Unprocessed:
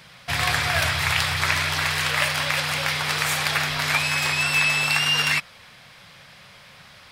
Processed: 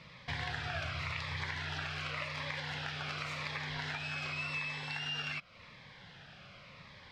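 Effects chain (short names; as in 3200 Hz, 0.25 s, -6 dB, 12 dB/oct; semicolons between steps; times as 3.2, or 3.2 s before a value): compressor 4:1, threshold -31 dBFS, peak gain reduction 12.5 dB; air absorption 180 m; cascading phaser falling 0.89 Hz; gain -2.5 dB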